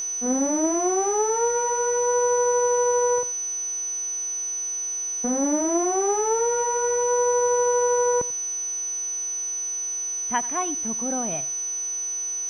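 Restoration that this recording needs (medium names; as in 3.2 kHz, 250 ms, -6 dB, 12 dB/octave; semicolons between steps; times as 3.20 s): de-hum 365.4 Hz, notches 30; band-stop 6 kHz, Q 30; inverse comb 90 ms -19.5 dB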